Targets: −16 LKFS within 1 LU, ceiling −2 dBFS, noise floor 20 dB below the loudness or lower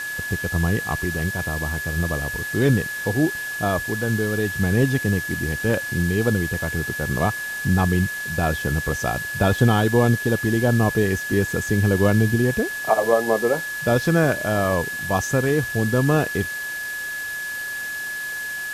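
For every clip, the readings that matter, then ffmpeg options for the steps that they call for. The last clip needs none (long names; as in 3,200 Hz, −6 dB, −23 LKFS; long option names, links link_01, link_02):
interfering tone 1,700 Hz; level of the tone −27 dBFS; background noise floor −30 dBFS; target noise floor −42 dBFS; integrated loudness −22.0 LKFS; sample peak −4.0 dBFS; target loudness −16.0 LKFS
→ -af "bandreject=frequency=1700:width=30"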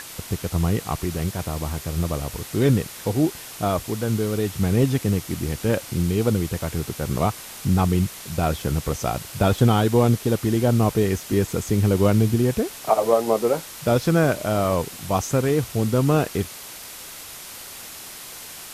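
interfering tone none found; background noise floor −39 dBFS; target noise floor −43 dBFS
→ -af "afftdn=noise_reduction=6:noise_floor=-39"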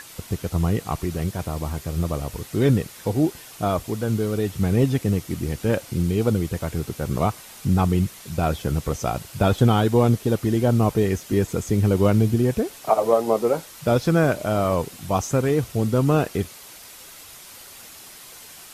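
background noise floor −43 dBFS; integrated loudness −22.5 LKFS; sample peak −4.5 dBFS; target loudness −16.0 LKFS
→ -af "volume=6.5dB,alimiter=limit=-2dB:level=0:latency=1"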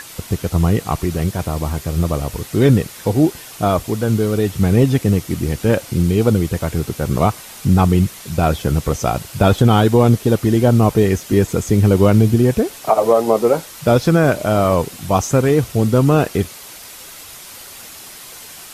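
integrated loudness −16.5 LKFS; sample peak −2.0 dBFS; background noise floor −37 dBFS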